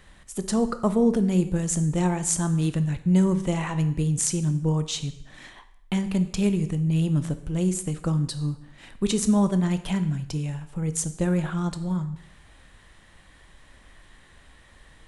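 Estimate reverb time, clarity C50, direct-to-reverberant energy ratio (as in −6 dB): 0.70 s, 13.0 dB, 10.0 dB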